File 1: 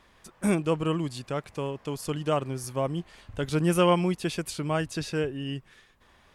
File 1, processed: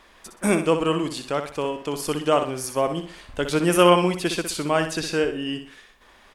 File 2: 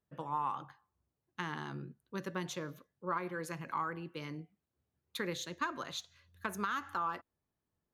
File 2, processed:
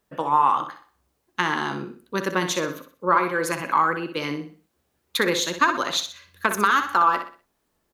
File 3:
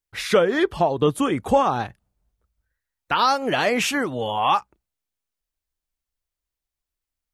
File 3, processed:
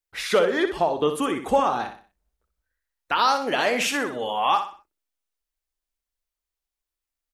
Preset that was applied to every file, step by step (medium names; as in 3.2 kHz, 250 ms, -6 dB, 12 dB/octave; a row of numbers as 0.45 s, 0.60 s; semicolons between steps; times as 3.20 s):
peaking EQ 110 Hz -14 dB 1.4 oct; on a send: feedback delay 62 ms, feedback 35%, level -8.5 dB; on the sum: normalise loudness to -23 LUFS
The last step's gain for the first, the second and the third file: +7.0 dB, +17.0 dB, -1.5 dB